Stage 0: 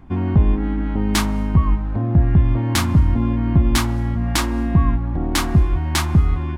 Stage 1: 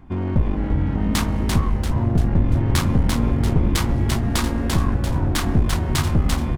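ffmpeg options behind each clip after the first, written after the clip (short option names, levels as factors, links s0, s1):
-filter_complex "[0:a]aeval=exprs='clip(val(0),-1,0.0794)':c=same,asplit=7[s0][s1][s2][s3][s4][s5][s6];[s1]adelay=342,afreqshift=-140,volume=0.668[s7];[s2]adelay=684,afreqshift=-280,volume=0.295[s8];[s3]adelay=1026,afreqshift=-420,volume=0.129[s9];[s4]adelay=1368,afreqshift=-560,volume=0.0569[s10];[s5]adelay=1710,afreqshift=-700,volume=0.0251[s11];[s6]adelay=2052,afreqshift=-840,volume=0.011[s12];[s0][s7][s8][s9][s10][s11][s12]amix=inputs=7:normalize=0,volume=0.841"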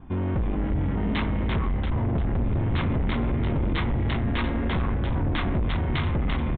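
-af "adynamicequalizer=threshold=0.00355:dfrequency=2100:dqfactor=7.7:tfrequency=2100:tqfactor=7.7:attack=5:release=100:ratio=0.375:range=3:mode=boostabove:tftype=bell,aresample=8000,asoftclip=type=tanh:threshold=0.0944,aresample=44100"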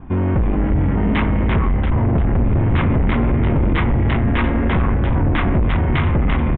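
-af "lowpass=f=2800:w=0.5412,lowpass=f=2800:w=1.3066,volume=2.66"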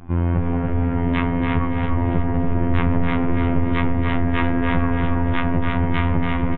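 -filter_complex "[0:a]afftfilt=real='hypot(re,im)*cos(PI*b)':imag='0':win_size=2048:overlap=0.75,asplit=2[s0][s1];[s1]adelay=286,lowpass=f=2600:p=1,volume=0.708,asplit=2[s2][s3];[s3]adelay=286,lowpass=f=2600:p=1,volume=0.52,asplit=2[s4][s5];[s5]adelay=286,lowpass=f=2600:p=1,volume=0.52,asplit=2[s6][s7];[s7]adelay=286,lowpass=f=2600:p=1,volume=0.52,asplit=2[s8][s9];[s9]adelay=286,lowpass=f=2600:p=1,volume=0.52,asplit=2[s10][s11];[s11]adelay=286,lowpass=f=2600:p=1,volume=0.52,asplit=2[s12][s13];[s13]adelay=286,lowpass=f=2600:p=1,volume=0.52[s14];[s0][s2][s4][s6][s8][s10][s12][s14]amix=inputs=8:normalize=0"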